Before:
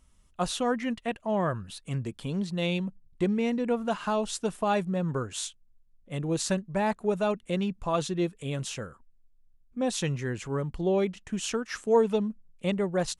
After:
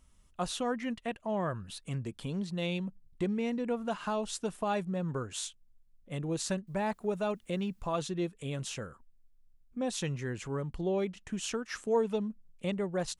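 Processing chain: in parallel at +0.5 dB: compression, threshold -36 dBFS, peak gain reduction 17.5 dB; 6.67–7.99 s: on the sum: word length cut 12-bit, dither triangular; trim -7.5 dB

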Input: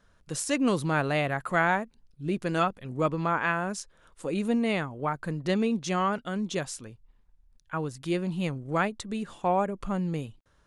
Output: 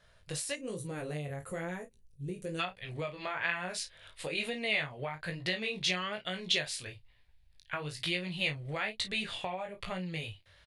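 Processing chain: fifteen-band graphic EQ 100 Hz +10 dB, 250 Hz -10 dB, 630 Hz +7 dB, 10 kHz +8 dB; chorus 1.1 Hz, delay 16.5 ms, depth 5.2 ms; doubling 33 ms -11 dB; 0.55–2.60 s: time-frequency box 550–5600 Hz -14 dB; compression 10:1, threshold -35 dBFS, peak gain reduction 16.5 dB; high-order bell 2.9 kHz +9 dB, from 2.56 s +16 dB

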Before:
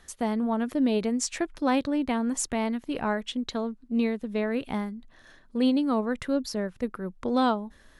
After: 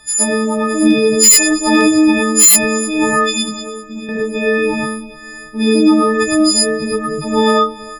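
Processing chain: partials quantised in pitch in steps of 6 st; 3.41–4.09 s: compression, threshold -36 dBFS, peak gain reduction 14 dB; on a send: feedback delay 315 ms, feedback 54%, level -20 dB; on the sum: gated-style reverb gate 140 ms rising, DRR -5 dB; wavefolder -8 dBFS; trim +6 dB

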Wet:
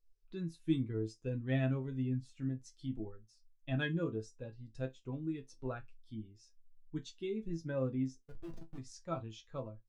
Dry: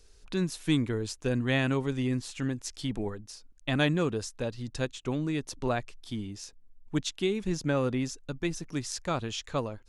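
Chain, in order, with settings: 8.20–8.78 s: Schmitt trigger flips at -36 dBFS; chord resonator A2 minor, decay 0.21 s; spectral contrast expander 1.5:1; trim +3.5 dB

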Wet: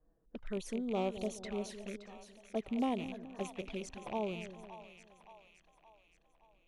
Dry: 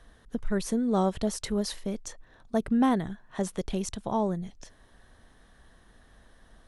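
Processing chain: rattle on loud lows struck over -40 dBFS, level -27 dBFS; level-controlled noise filter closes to 380 Hz, open at -25.5 dBFS; tone controls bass -9 dB, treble -3 dB; touch-sensitive flanger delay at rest 6.7 ms, full sweep at -29 dBFS; two-band feedback delay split 670 Hz, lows 212 ms, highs 570 ms, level -11 dB; loudspeaker Doppler distortion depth 0.12 ms; trim -6 dB

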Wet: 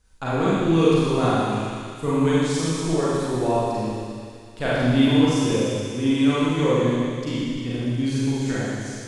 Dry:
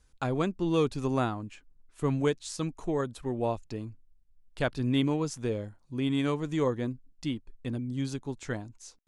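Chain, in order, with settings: feedback echo behind a high-pass 119 ms, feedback 79%, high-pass 1.9 kHz, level -8 dB; reverberation RT60 2.0 s, pre-delay 33 ms, DRR -9 dB

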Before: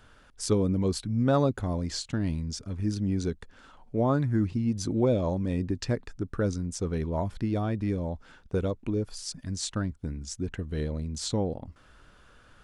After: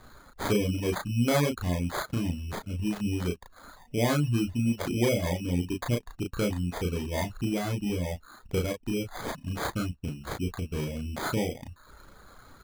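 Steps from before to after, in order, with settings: treble shelf 5.3 kHz +5 dB; in parallel at +1 dB: compression, threshold -41 dBFS, peak gain reduction 20.5 dB; on the sum: sample-and-hold 16×; doubling 34 ms -2.5 dB; reverb removal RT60 0.57 s; trim -3 dB

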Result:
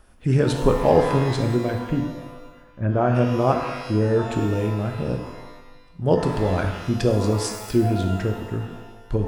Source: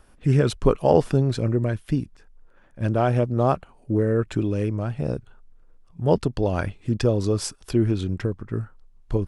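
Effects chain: 1.78–3.14 s: low-pass 3 kHz -> 1.8 kHz 24 dB/octave; pitch-shifted reverb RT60 1.1 s, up +12 st, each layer -8 dB, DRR 3.5 dB

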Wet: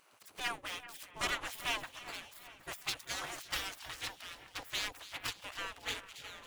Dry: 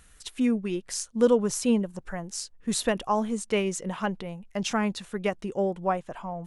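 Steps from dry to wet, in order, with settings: median filter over 25 samples; spectral gate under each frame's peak -30 dB weak; two-band feedback delay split 2.7 kHz, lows 387 ms, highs 275 ms, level -14 dB; trim +10 dB

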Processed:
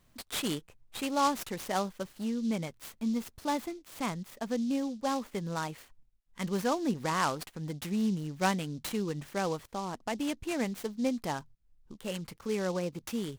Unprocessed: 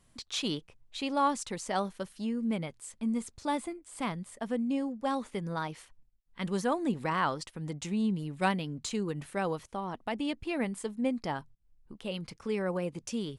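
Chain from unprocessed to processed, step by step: delay time shaken by noise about 4.6 kHz, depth 0.037 ms

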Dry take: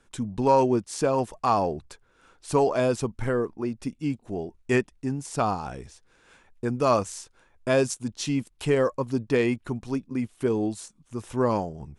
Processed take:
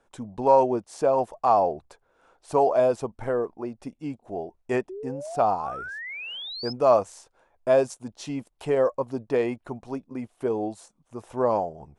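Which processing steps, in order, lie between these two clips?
peaking EQ 680 Hz +15 dB 1.5 oct; painted sound rise, 4.89–6.73 s, 360–5300 Hz -27 dBFS; trim -9 dB

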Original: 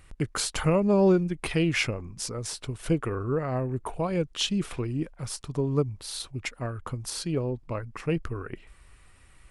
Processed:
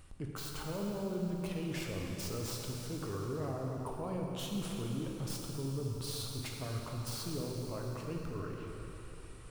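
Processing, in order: tracing distortion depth 0.14 ms; peaking EQ 2 kHz -7.5 dB 0.75 oct; reverse; compression, threshold -35 dBFS, peak gain reduction 17 dB; reverse; peak limiter -33.5 dBFS, peak gain reduction 9.5 dB; plate-style reverb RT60 3.7 s, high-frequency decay 0.95×, DRR -1 dB

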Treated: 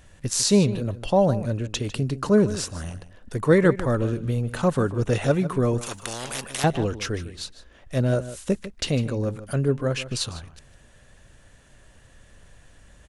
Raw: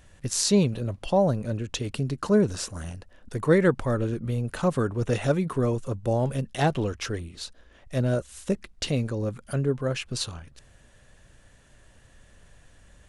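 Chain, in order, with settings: echo from a far wall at 26 m, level -14 dB; 5.81–6.64 s: spectrum-flattening compressor 4:1; trim +2.5 dB

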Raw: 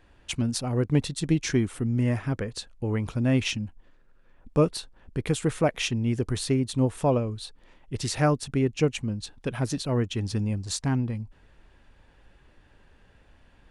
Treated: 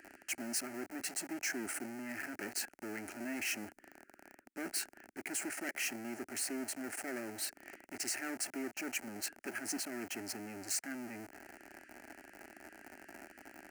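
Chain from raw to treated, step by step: reverse; compression 8:1, threshold -35 dBFS, peak gain reduction 18.5 dB; reverse; hard clipper -38 dBFS, distortion -9 dB; Butterworth band-stop 770 Hz, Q 0.84; in parallel at -3.5 dB: Schmitt trigger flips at -56.5 dBFS; on the sum: high-pass 400 Hz 12 dB/octave; static phaser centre 720 Hz, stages 8; trim +8 dB

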